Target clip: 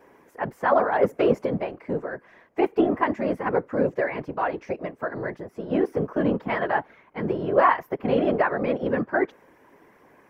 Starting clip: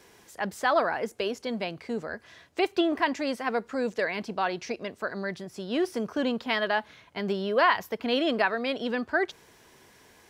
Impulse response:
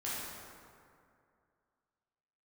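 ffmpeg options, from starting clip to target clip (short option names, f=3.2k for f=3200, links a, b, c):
-filter_complex "[0:a]equalizer=f=125:t=o:w=1:g=-4,equalizer=f=250:t=o:w=1:g=11,equalizer=f=500:t=o:w=1:g=9,equalizer=f=1k:t=o:w=1:g=8,equalizer=f=2k:t=o:w=1:g=7,equalizer=f=4k:t=o:w=1:g=-11,equalizer=f=8k:t=o:w=1:g=-8,asplit=3[a][b][c];[a]afade=t=out:st=0.92:d=0.02[d];[b]acontrast=90,afade=t=in:st=0.92:d=0.02,afade=t=out:st=1.45:d=0.02[e];[c]afade=t=in:st=1.45:d=0.02[f];[d][e][f]amix=inputs=3:normalize=0,afftfilt=real='hypot(re,im)*cos(2*PI*random(0))':imag='hypot(re,im)*sin(2*PI*random(1))':win_size=512:overlap=0.75,volume=-1dB"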